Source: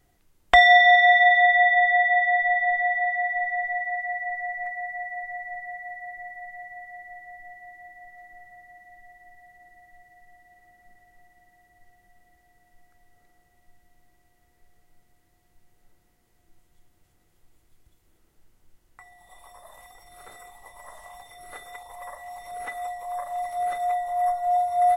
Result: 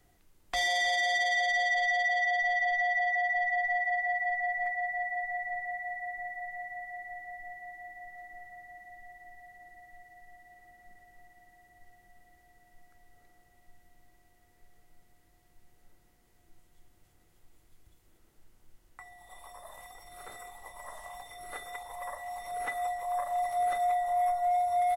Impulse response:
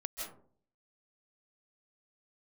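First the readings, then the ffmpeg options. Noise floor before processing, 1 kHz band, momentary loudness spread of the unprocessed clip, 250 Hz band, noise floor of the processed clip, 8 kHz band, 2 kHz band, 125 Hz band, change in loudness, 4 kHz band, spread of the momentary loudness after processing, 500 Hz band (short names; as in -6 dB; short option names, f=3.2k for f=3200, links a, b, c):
-65 dBFS, -7.5 dB, 24 LU, -5.0 dB, -65 dBFS, +4.5 dB, -8.5 dB, -6.0 dB, -9.5 dB, -6.5 dB, 21 LU, -7.5 dB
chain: -filter_complex "[0:a]asoftclip=type=tanh:threshold=-15dB,bandreject=f=60:t=h:w=6,bandreject=f=120:t=h:w=6,bandreject=f=180:t=h:w=6,asplit=2[a][b];[b]asplit=2[c][d];[c]adelay=315,afreqshift=32,volume=-21.5dB[e];[d]adelay=630,afreqshift=64,volume=-31.7dB[f];[e][f]amix=inputs=2:normalize=0[g];[a][g]amix=inputs=2:normalize=0,acrossover=split=180|3000[h][i][j];[i]acompressor=threshold=-25dB:ratio=6[k];[h][k][j]amix=inputs=3:normalize=0,alimiter=limit=-22dB:level=0:latency=1"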